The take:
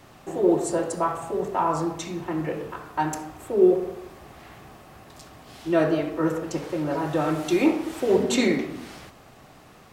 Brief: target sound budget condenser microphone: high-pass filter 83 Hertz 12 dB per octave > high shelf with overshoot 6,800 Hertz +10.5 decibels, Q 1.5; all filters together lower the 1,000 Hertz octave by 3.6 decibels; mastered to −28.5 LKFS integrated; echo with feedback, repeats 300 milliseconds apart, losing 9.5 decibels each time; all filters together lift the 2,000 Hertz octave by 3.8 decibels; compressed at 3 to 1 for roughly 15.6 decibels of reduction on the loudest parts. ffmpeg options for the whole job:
ffmpeg -i in.wav -af "equalizer=frequency=1000:width_type=o:gain=-6,equalizer=frequency=2000:width_type=o:gain=7,acompressor=threshold=-36dB:ratio=3,highpass=83,highshelf=frequency=6800:width_type=q:width=1.5:gain=10.5,aecho=1:1:300|600|900|1200:0.335|0.111|0.0365|0.012,volume=8dB" out.wav

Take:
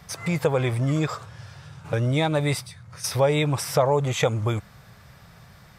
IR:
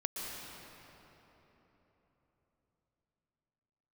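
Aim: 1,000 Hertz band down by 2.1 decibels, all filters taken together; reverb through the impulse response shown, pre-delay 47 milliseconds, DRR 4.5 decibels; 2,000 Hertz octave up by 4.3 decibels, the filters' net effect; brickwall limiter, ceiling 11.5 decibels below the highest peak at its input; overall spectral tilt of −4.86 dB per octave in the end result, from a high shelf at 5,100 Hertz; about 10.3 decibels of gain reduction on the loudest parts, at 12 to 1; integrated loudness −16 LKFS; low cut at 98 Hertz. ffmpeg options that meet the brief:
-filter_complex "[0:a]highpass=98,equalizer=frequency=1000:width_type=o:gain=-4,equalizer=frequency=2000:width_type=o:gain=6.5,highshelf=frequency=5100:gain=-4,acompressor=threshold=-26dB:ratio=12,alimiter=limit=-24dB:level=0:latency=1,asplit=2[link_01][link_02];[1:a]atrim=start_sample=2205,adelay=47[link_03];[link_02][link_03]afir=irnorm=-1:irlink=0,volume=-7.5dB[link_04];[link_01][link_04]amix=inputs=2:normalize=0,volume=17.5dB"

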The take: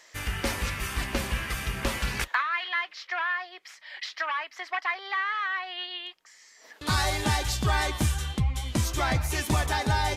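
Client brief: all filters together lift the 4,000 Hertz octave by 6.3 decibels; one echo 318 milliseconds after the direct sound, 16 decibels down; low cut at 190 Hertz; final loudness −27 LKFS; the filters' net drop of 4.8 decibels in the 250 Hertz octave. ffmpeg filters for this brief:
ffmpeg -i in.wav -af "highpass=190,equalizer=frequency=250:width_type=o:gain=-4,equalizer=frequency=4000:width_type=o:gain=8,aecho=1:1:318:0.158,volume=0.5dB" out.wav

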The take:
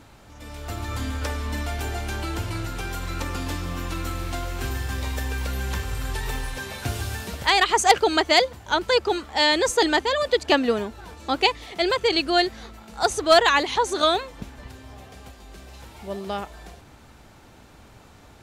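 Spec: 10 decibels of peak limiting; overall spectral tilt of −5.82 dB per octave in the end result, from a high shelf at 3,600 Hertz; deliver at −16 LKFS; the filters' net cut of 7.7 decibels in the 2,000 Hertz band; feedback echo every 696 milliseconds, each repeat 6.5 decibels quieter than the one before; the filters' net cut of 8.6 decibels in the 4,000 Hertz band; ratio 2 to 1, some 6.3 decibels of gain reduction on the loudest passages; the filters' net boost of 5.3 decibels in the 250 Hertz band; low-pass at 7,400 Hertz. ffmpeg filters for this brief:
ffmpeg -i in.wav -af "lowpass=7400,equalizer=frequency=250:width_type=o:gain=7.5,equalizer=frequency=2000:width_type=o:gain=-7.5,highshelf=frequency=3600:gain=-4.5,equalizer=frequency=4000:width_type=o:gain=-5,acompressor=threshold=-23dB:ratio=2,alimiter=limit=-21dB:level=0:latency=1,aecho=1:1:696|1392|2088|2784|3480|4176:0.473|0.222|0.105|0.0491|0.0231|0.0109,volume=14.5dB" out.wav

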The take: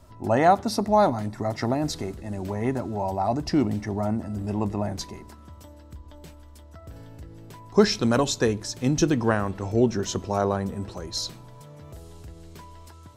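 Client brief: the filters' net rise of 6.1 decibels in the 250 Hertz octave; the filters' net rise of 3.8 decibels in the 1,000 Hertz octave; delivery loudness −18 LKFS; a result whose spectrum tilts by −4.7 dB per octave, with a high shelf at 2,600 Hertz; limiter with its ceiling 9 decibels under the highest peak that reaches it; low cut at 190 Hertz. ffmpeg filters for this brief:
ffmpeg -i in.wav -af "highpass=190,equalizer=frequency=250:width_type=o:gain=9,equalizer=frequency=1000:width_type=o:gain=4,highshelf=frequency=2600:gain=4,volume=6dB,alimiter=limit=-5.5dB:level=0:latency=1" out.wav

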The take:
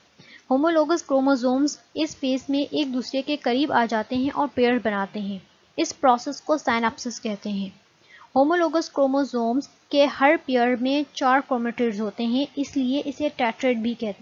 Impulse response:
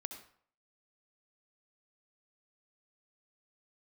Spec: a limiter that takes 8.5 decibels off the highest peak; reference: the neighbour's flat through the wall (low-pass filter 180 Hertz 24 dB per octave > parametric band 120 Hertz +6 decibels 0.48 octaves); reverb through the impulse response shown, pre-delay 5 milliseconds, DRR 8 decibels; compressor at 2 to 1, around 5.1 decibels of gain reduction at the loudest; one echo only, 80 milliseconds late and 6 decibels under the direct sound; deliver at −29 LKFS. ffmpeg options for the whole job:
-filter_complex "[0:a]acompressor=threshold=-22dB:ratio=2,alimiter=limit=-18.5dB:level=0:latency=1,aecho=1:1:80:0.501,asplit=2[link_01][link_02];[1:a]atrim=start_sample=2205,adelay=5[link_03];[link_02][link_03]afir=irnorm=-1:irlink=0,volume=-5.5dB[link_04];[link_01][link_04]amix=inputs=2:normalize=0,lowpass=frequency=180:width=0.5412,lowpass=frequency=180:width=1.3066,equalizer=frequency=120:width_type=o:width=0.48:gain=6,volume=10dB"

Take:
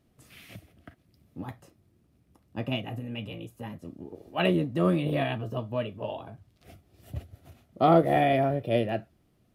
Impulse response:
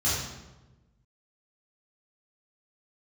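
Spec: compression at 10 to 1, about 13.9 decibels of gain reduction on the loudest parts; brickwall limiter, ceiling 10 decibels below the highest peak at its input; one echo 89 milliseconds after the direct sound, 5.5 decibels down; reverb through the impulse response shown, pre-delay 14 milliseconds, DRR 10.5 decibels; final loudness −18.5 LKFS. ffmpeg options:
-filter_complex "[0:a]acompressor=threshold=-29dB:ratio=10,alimiter=level_in=5dB:limit=-24dB:level=0:latency=1,volume=-5dB,aecho=1:1:89:0.531,asplit=2[link_01][link_02];[1:a]atrim=start_sample=2205,adelay=14[link_03];[link_02][link_03]afir=irnorm=-1:irlink=0,volume=-21.5dB[link_04];[link_01][link_04]amix=inputs=2:normalize=0,volume=20dB"

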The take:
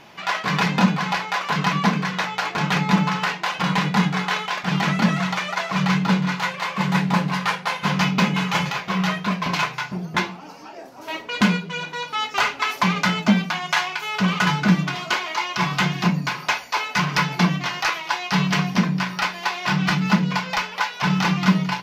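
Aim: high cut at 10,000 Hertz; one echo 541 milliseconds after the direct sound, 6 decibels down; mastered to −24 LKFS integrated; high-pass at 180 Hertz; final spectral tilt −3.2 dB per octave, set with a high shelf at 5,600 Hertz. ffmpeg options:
ffmpeg -i in.wav -af "highpass=180,lowpass=10000,highshelf=frequency=5600:gain=-5.5,aecho=1:1:541:0.501,volume=-1.5dB" out.wav

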